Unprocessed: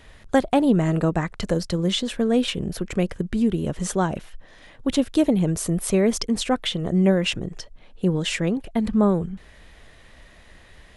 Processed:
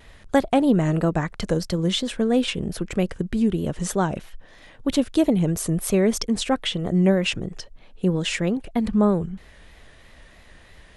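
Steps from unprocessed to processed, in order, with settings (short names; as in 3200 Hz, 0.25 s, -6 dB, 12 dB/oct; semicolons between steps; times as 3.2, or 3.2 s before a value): vibrato 3.1 Hz 61 cents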